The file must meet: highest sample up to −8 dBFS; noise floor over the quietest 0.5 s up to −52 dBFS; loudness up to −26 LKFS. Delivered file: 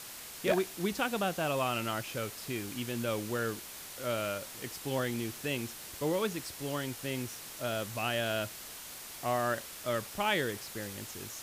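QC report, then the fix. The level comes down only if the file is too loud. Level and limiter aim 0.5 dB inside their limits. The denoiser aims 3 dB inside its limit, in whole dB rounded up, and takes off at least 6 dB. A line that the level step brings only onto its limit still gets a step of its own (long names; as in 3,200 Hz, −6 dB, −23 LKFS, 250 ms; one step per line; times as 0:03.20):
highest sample −15.5 dBFS: in spec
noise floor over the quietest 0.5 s −46 dBFS: out of spec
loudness −34.5 LKFS: in spec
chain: broadband denoise 9 dB, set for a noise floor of −46 dBFS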